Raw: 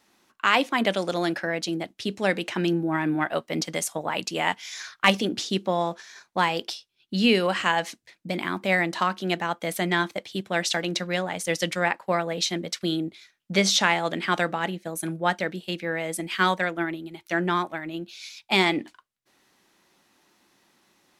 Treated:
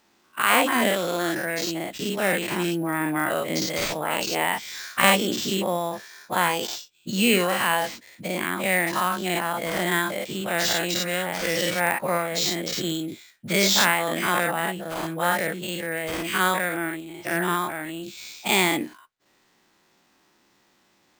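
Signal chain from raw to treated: spectral dilation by 0.12 s; sample-rate reducer 11000 Hz, jitter 0%; gain -4 dB

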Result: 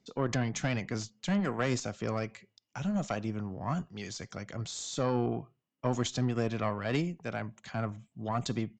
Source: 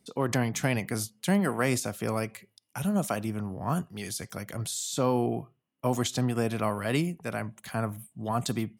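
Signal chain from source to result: tube stage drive 16 dB, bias 0.65; downsampling 16000 Hz

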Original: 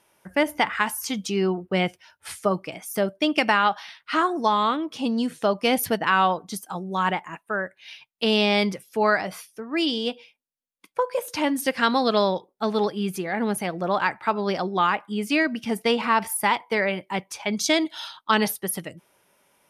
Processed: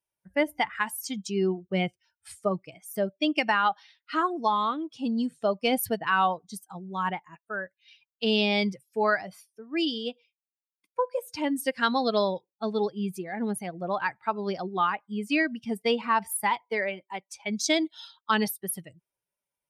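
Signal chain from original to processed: per-bin expansion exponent 1.5; 16.68–17.34 HPF 180 Hz -> 450 Hz 12 dB/oct; gain -1.5 dB

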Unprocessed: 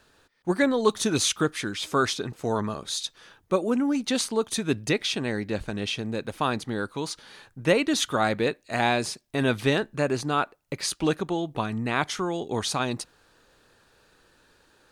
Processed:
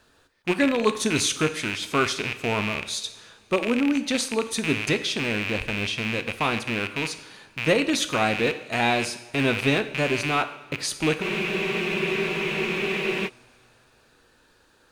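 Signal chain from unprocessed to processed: rattling part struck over -40 dBFS, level -16 dBFS; two-slope reverb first 0.76 s, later 3.3 s, from -19 dB, DRR 9 dB; spectral freeze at 11.25, 2.02 s

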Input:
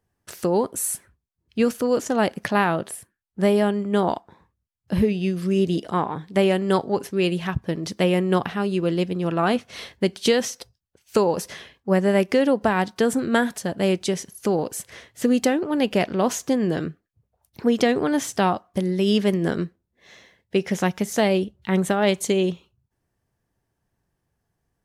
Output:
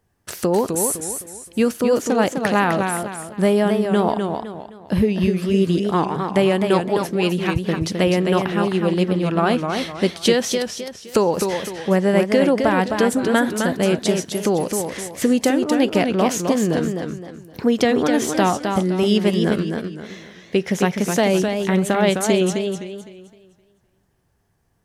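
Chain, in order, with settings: in parallel at +2.5 dB: compressor, threshold -31 dBFS, peak gain reduction 16.5 dB; on the sum: warbling echo 0.257 s, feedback 35%, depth 125 cents, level -5.5 dB

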